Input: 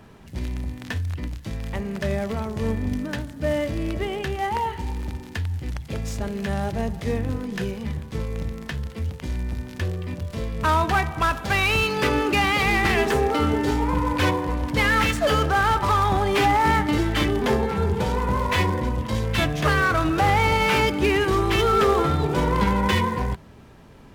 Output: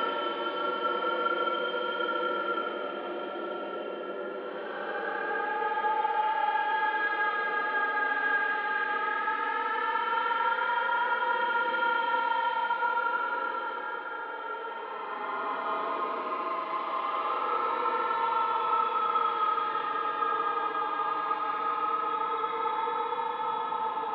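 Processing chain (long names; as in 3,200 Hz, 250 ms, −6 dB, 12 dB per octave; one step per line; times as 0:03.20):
single-sideband voice off tune +59 Hz 250–3,300 Hz
flutter between parallel walls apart 6.7 metres, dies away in 0.23 s
extreme stretch with random phases 32×, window 0.05 s, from 0:15.35
level −9 dB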